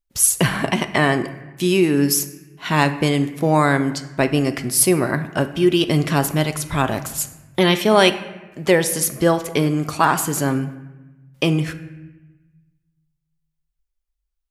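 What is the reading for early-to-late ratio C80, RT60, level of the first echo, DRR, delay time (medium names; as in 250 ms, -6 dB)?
14.5 dB, 1.1 s, no echo, 9.0 dB, no echo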